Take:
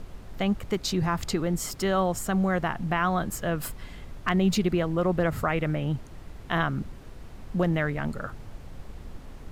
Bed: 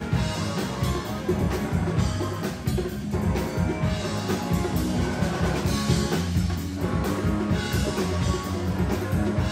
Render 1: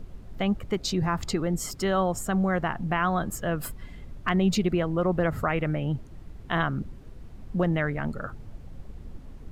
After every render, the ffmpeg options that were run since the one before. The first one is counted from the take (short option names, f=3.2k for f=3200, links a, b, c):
-af "afftdn=nr=8:nf=-44"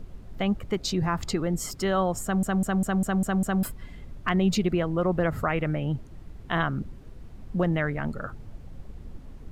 -filter_complex "[0:a]asplit=8[a][b][c][d][e][f][g][h];[a]atrim=end=2.432[i];[b]atrim=start=2.228:end=2.432[j];[c]atrim=start=2.228:end=2.432[k];[d]atrim=start=2.228:end=2.432[l];[e]atrim=start=2.228:end=2.432[m];[f]atrim=start=2.228:end=2.432[n];[g]atrim=start=2.228:end=2.432[o];[h]atrim=start=3.628[p];[i][j]acrossfade=d=0.004:c1=hsin:c2=hsin[q];[q][k]acrossfade=d=0.004:c1=hsin:c2=hsin[r];[r][l]acrossfade=d=0.004:c1=hsin:c2=hsin[s];[s][m]acrossfade=d=0.004:c1=hsin:c2=hsin[t];[t][n]acrossfade=d=0.004:c1=hsin:c2=hsin[u];[u][o]acrossfade=d=0.004:c1=hsin:c2=hsin[v];[v][p]acrossfade=d=0.004:c1=hsin:c2=hsin"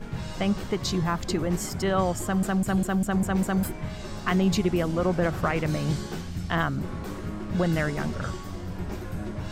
-filter_complex "[1:a]volume=-9.5dB[a];[0:a][a]amix=inputs=2:normalize=0"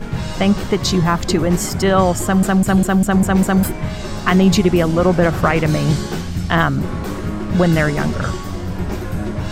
-af "volume=10.5dB,alimiter=limit=-2dB:level=0:latency=1"